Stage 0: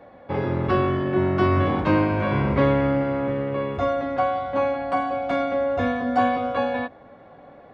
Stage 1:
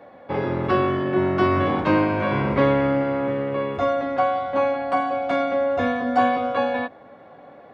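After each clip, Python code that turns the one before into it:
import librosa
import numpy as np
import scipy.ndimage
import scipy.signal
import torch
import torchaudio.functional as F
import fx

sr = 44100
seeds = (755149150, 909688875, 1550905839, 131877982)

y = fx.highpass(x, sr, hz=180.0, slope=6)
y = y * 10.0 ** (2.0 / 20.0)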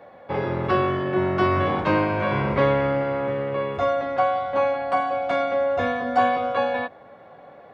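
y = fx.peak_eq(x, sr, hz=270.0, db=-7.0, octaves=0.5)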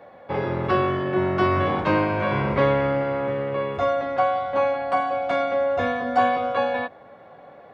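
y = x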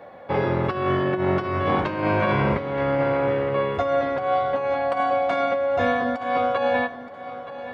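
y = fx.over_compress(x, sr, threshold_db=-23.0, ratio=-0.5)
y = fx.echo_feedback(y, sr, ms=923, feedback_pct=31, wet_db=-14.0)
y = y * 10.0 ** (1.5 / 20.0)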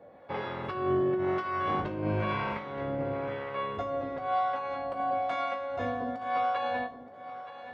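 y = fx.harmonic_tremolo(x, sr, hz=1.0, depth_pct=70, crossover_hz=660.0)
y = fx.comb_fb(y, sr, f0_hz=53.0, decay_s=0.36, harmonics='all', damping=0.0, mix_pct=80)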